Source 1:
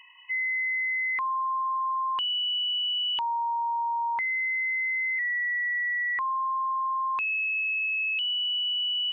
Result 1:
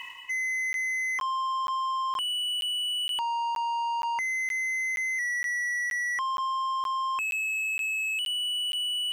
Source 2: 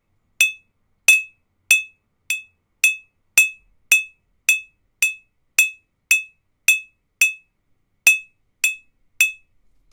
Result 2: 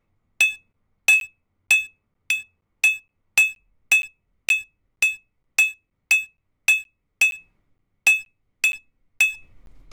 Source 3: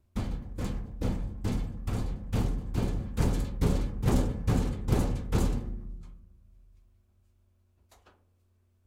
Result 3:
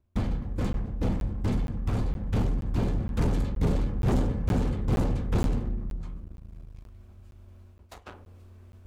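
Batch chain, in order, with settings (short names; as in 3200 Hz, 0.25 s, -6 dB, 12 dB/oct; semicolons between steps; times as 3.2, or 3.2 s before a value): high shelf 4700 Hz -10.5 dB; in parallel at +0.5 dB: compressor, threshold -35 dBFS; on the sum: sample leveller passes 2; reverse; upward compressor, threshold -26 dBFS; reverse; crackling interface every 0.47 s, samples 512, zero, from 0.73; gain -5.5 dB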